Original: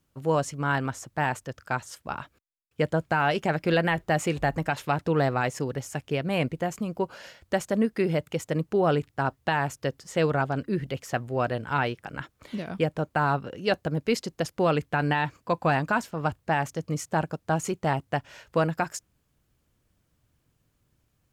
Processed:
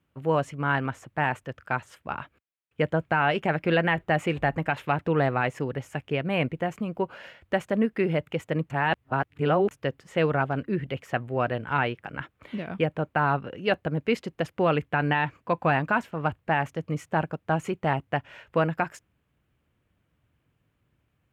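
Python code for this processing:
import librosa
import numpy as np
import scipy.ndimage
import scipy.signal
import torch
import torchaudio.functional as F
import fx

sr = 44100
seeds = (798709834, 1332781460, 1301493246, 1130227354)

y = fx.edit(x, sr, fx.reverse_span(start_s=8.7, length_s=1.01), tone=tone)
y = scipy.signal.sosfilt(scipy.signal.butter(2, 52.0, 'highpass', fs=sr, output='sos'), y)
y = fx.high_shelf_res(y, sr, hz=3700.0, db=-10.5, q=1.5)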